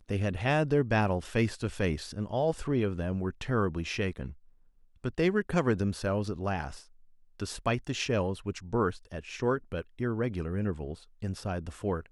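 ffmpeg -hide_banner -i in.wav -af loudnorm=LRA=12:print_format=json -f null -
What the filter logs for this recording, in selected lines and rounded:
"input_i" : "-31.7",
"input_tp" : "-12.0",
"input_lra" : "3.1",
"input_thresh" : "-42.0",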